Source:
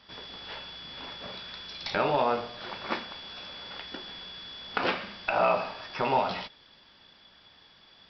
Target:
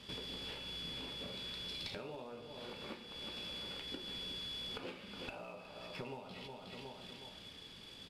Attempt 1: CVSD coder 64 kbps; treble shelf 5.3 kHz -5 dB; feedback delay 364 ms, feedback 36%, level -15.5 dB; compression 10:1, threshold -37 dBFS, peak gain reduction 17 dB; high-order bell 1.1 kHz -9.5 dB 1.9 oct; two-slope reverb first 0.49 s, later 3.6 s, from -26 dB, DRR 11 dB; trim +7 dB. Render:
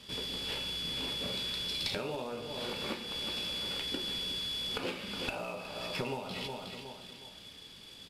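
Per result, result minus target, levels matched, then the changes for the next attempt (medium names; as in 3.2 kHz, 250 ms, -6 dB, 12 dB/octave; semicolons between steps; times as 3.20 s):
compression: peak gain reduction -9 dB; 8 kHz band +3.0 dB
change: compression 10:1, threshold -47.5 dBFS, peak gain reduction 26.5 dB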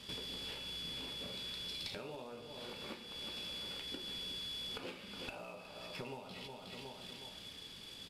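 8 kHz band +4.0 dB
change: treble shelf 5.3 kHz -14 dB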